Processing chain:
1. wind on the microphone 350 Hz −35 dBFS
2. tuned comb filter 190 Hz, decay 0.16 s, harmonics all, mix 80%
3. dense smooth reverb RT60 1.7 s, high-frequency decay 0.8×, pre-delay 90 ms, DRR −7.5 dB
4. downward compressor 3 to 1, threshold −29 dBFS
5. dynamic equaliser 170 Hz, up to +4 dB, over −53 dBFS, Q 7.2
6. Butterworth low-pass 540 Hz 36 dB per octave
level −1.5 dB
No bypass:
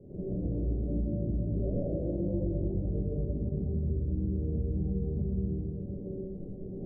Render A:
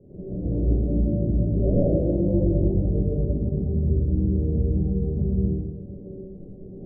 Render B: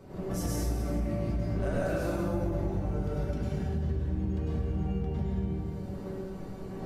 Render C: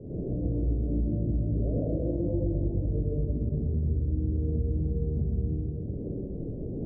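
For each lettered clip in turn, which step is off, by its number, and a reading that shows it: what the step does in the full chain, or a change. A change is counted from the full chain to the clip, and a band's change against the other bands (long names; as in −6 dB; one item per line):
4, average gain reduction 7.0 dB
6, change in crest factor +1.5 dB
2, change in integrated loudness +3.0 LU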